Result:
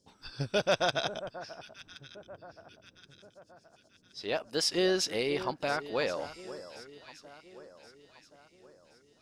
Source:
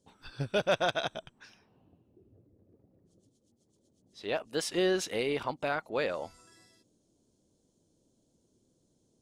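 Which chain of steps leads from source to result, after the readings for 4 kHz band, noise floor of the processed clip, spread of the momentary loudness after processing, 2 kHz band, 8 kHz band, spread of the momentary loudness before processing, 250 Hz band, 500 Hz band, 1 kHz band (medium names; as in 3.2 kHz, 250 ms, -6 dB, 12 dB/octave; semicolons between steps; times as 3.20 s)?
+4.0 dB, -66 dBFS, 22 LU, +0.5 dB, +3.5 dB, 13 LU, +0.5 dB, +0.5 dB, +0.5 dB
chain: peaking EQ 5.1 kHz +12 dB 0.39 oct; on a send: echo whose repeats swap between lows and highs 537 ms, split 1.5 kHz, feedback 66%, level -13 dB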